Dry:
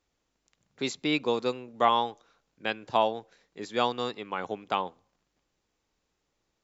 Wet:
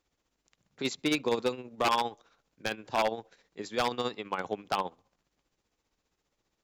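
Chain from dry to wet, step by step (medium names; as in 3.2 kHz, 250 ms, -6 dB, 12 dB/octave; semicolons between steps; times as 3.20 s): tremolo 15 Hz, depth 59%; wavefolder -20.5 dBFS; trim +2 dB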